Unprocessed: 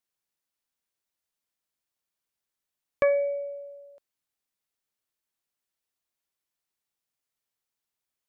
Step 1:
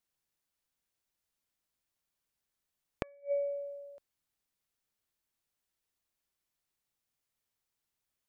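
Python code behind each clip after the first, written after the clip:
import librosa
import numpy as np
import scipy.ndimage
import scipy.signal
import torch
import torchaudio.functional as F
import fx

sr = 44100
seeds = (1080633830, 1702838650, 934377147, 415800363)

y = fx.low_shelf(x, sr, hz=150.0, db=8.0)
y = fx.gate_flip(y, sr, shuts_db=-20.0, range_db=-35)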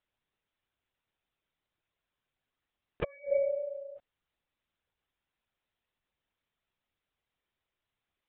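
y = fx.lpc_vocoder(x, sr, seeds[0], excitation='whisper', order=16)
y = F.gain(torch.from_numpy(y), 4.5).numpy()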